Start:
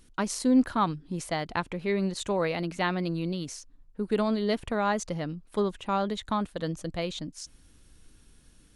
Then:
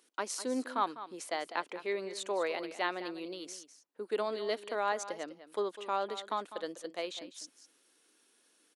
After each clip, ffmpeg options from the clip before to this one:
-af "highpass=f=340:w=0.5412,highpass=f=340:w=1.3066,aecho=1:1:201:0.211,volume=-4.5dB"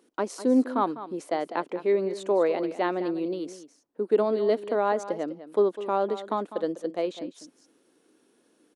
-af "tiltshelf=f=880:g=10,volume=6dB"

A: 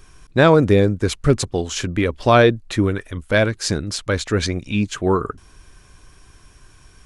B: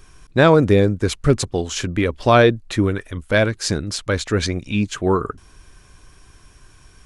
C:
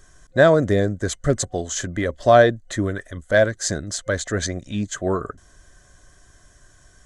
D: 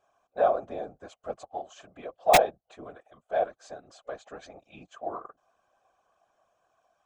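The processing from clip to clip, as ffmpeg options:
-af anull
-af "superequalizer=8b=2.51:9b=0.708:11b=1.78:12b=0.398:15b=2.51,volume=-5dB"
-filter_complex "[0:a]asplit=3[a][b][c];[a]bandpass=f=730:t=q:w=8,volume=0dB[d];[b]bandpass=f=1.09k:t=q:w=8,volume=-6dB[e];[c]bandpass=f=2.44k:t=q:w=8,volume=-9dB[f];[d][e][f]amix=inputs=3:normalize=0,aeval=exprs='(mod(2.66*val(0)+1,2)-1)/2.66':c=same,afftfilt=real='hypot(re,im)*cos(2*PI*random(0))':imag='hypot(re,im)*sin(2*PI*random(1))':win_size=512:overlap=0.75,volume=4.5dB"

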